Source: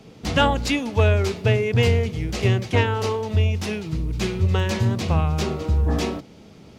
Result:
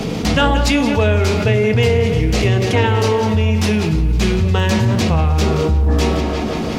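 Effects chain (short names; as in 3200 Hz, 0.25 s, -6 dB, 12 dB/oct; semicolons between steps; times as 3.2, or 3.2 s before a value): tape echo 0.173 s, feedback 66%, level -12 dB, low-pass 4900 Hz; on a send at -8.5 dB: reverb RT60 0.40 s, pre-delay 4 ms; on the sum: fast leveller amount 70%; gain +1.5 dB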